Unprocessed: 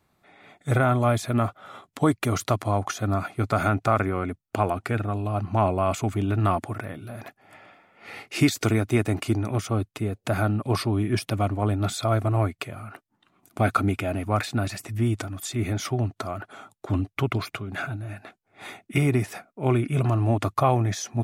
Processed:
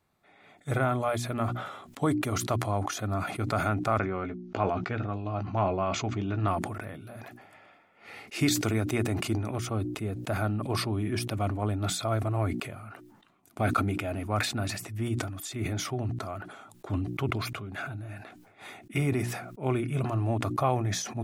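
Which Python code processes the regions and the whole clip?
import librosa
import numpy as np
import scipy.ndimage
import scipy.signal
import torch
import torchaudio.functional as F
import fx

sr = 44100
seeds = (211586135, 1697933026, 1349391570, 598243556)

y = fx.chain(x, sr, fx.steep_lowpass(hz=6400.0, slope=48),
    fx.doubler(ms=16.0, db=-9.5), at=(3.98, 6.48))
y = fx.hum_notches(y, sr, base_hz=60, count=6)
y = fx.sustainer(y, sr, db_per_s=53.0)
y = y * 10.0 ** (-5.5 / 20.0)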